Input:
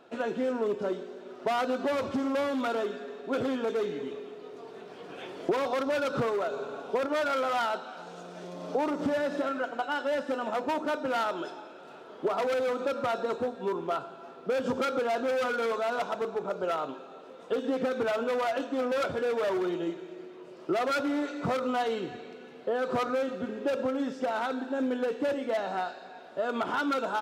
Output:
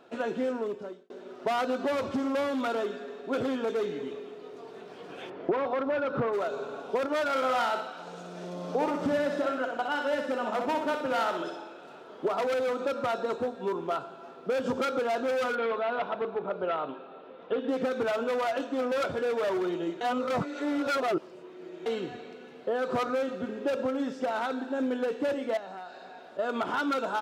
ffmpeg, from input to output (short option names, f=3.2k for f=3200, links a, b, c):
-filter_complex "[0:a]asplit=3[a][b][c];[a]afade=t=out:st=5.29:d=0.02[d];[b]lowpass=2.1k,afade=t=in:st=5.29:d=0.02,afade=t=out:st=6.32:d=0.02[e];[c]afade=t=in:st=6.32:d=0.02[f];[d][e][f]amix=inputs=3:normalize=0,asettb=1/sr,asplit=3[g][h][i];[g]atrim=end=7.294[j];[h]atrim=start=7.29:end=11.87,asetpts=PTS-STARTPTS,afade=t=in:d=0.004:c=qsin,afade=t=out:st=4.576:d=0.004:c=qsin,aecho=1:1:62|124|186|248|310:0.501|0.216|0.0927|0.0398|0.0171,atrim=end_sample=201978[k];[i]atrim=start=11.866[l];[j][k]acrossfade=d=0.004:c1=hsin:c2=qsin[m];[m][l]acrossfade=d=0.004:c1=qsin:c2=hsin,asettb=1/sr,asplit=3[n][o][p];[n]atrim=end=15.554[q];[o]atrim=start=15.55:end=17.69,asetpts=PTS-STARTPTS,afade=t=in:d=0.004:c=qsin,afade=t=out:st=2.136:d=0.004:c=qsin,lowpass=f=3.5k:w=0.5412,lowpass=f=3.5k:w=1.3066[r];[p]atrim=start=17.686[s];[q][r]acrossfade=d=0.004:c1=hsin:c2=qsin[t];[t][s]acrossfade=d=0.004:c1=qsin:c2=hsin,asettb=1/sr,asplit=3[u][v][w];[u]atrim=end=25.574[x];[v]atrim=start=25.57:end=26.39,asetpts=PTS-STARTPTS,afade=t=in:d=0.004:c=qsin,afade=t=out:st=0.816:d=0.004:c=qsin,acompressor=threshold=-41dB:ratio=3:attack=3.2:release=140:knee=1:detection=peak[y];[w]atrim=start=26.386[z];[x][y]acrossfade=d=0.004:c1=hsin:c2=qsin[aa];[aa][z]acrossfade=d=0.004:c1=qsin:c2=hsin,asplit=4[ab][ac][ad][ae];[ab]atrim=end=1.1,asetpts=PTS-STARTPTS,afade=t=out:st=0.44:d=0.66[af];[ac]atrim=start=1.1:end=20.012,asetpts=PTS-STARTPTS,afade=t=in:d=0.004:c=hsin[ag];[ad]atrim=start=20.008:end=21.862,asetpts=PTS-STARTPTS,areverse[ah];[ae]atrim=start=21.858[ai];[af][ag]concat=n=2:v=0:a=1[aj];[aj][ah]acrossfade=d=0.004:c1=hsin:c2=hsin[ak];[ak][ai]acrossfade=d=0.004:c1=hsin:c2=hsin"